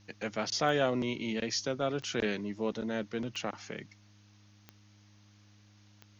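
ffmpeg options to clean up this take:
ffmpeg -i in.wav -af "adeclick=threshold=4,bandreject=frequency=102.8:width_type=h:width=4,bandreject=frequency=205.6:width_type=h:width=4,bandreject=frequency=308.4:width_type=h:width=4,agate=range=-21dB:threshold=-52dB" out.wav

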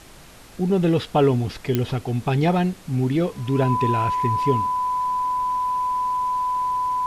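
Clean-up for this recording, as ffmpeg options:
ffmpeg -i in.wav -af "adeclick=threshold=4,bandreject=frequency=1000:width=30,afftdn=noise_reduction=24:noise_floor=-44" out.wav

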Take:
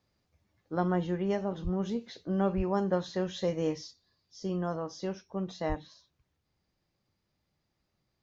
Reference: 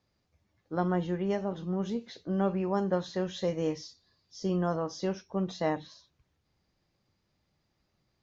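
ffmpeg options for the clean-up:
ffmpeg -i in.wav -filter_complex "[0:a]asplit=3[link_01][link_02][link_03];[link_01]afade=type=out:start_time=1.63:duration=0.02[link_04];[link_02]highpass=frequency=140:width=0.5412,highpass=frequency=140:width=1.3066,afade=type=in:start_time=1.63:duration=0.02,afade=type=out:start_time=1.75:duration=0.02[link_05];[link_03]afade=type=in:start_time=1.75:duration=0.02[link_06];[link_04][link_05][link_06]amix=inputs=3:normalize=0,asplit=3[link_07][link_08][link_09];[link_07]afade=type=out:start_time=2.56:duration=0.02[link_10];[link_08]highpass=frequency=140:width=0.5412,highpass=frequency=140:width=1.3066,afade=type=in:start_time=2.56:duration=0.02,afade=type=out:start_time=2.68:duration=0.02[link_11];[link_09]afade=type=in:start_time=2.68:duration=0.02[link_12];[link_10][link_11][link_12]amix=inputs=3:normalize=0,asplit=3[link_13][link_14][link_15];[link_13]afade=type=out:start_time=5.68:duration=0.02[link_16];[link_14]highpass=frequency=140:width=0.5412,highpass=frequency=140:width=1.3066,afade=type=in:start_time=5.68:duration=0.02,afade=type=out:start_time=5.8:duration=0.02[link_17];[link_15]afade=type=in:start_time=5.8:duration=0.02[link_18];[link_16][link_17][link_18]amix=inputs=3:normalize=0,asetnsamples=nb_out_samples=441:pad=0,asendcmd='3.91 volume volume 3.5dB',volume=0dB" out.wav

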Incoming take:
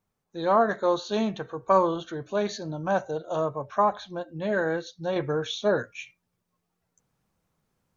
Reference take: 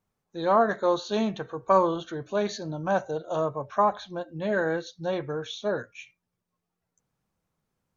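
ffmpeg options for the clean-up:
ffmpeg -i in.wav -af "asetnsamples=nb_out_samples=441:pad=0,asendcmd='5.16 volume volume -4.5dB',volume=0dB" out.wav

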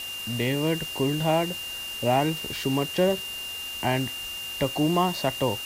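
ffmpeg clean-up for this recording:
ffmpeg -i in.wav -af "adeclick=threshold=4,bandreject=frequency=2800:width=30,afwtdn=0.01" out.wav

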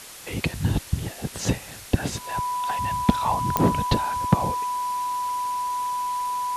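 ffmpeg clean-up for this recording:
ffmpeg -i in.wav -af "adeclick=threshold=4,bandreject=frequency=990:width=30,afwtdn=0.01" out.wav

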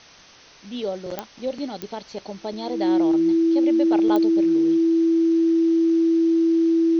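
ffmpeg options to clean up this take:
ffmpeg -i in.wav -af "adeclick=threshold=4,bandreject=frequency=330:width=30,afwtdn=0.0056" out.wav

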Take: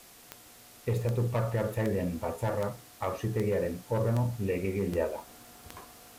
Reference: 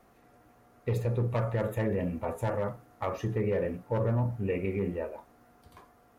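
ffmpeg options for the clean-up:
ffmpeg -i in.wav -af "adeclick=threshold=4,afwtdn=0.0022,asetnsamples=nb_out_samples=441:pad=0,asendcmd='4.92 volume volume -5.5dB',volume=0dB" out.wav

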